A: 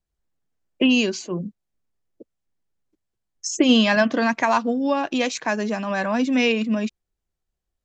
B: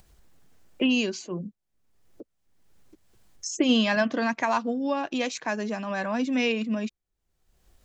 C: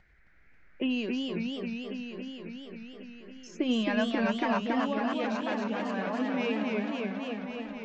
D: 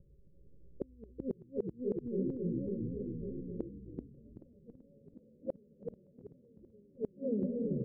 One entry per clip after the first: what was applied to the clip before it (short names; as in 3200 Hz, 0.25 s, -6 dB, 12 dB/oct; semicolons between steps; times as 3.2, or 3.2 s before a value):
upward compressor, threshold -30 dBFS; gain -5.5 dB
air absorption 200 m; band noise 1400–2300 Hz -63 dBFS; warbling echo 0.273 s, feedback 78%, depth 170 cents, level -3 dB; gain -6 dB
rippled Chebyshev low-pass 570 Hz, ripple 9 dB; flipped gate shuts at -33 dBFS, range -36 dB; on a send: frequency-shifting echo 0.382 s, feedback 34%, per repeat -61 Hz, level -4 dB; on the sum: gain +10 dB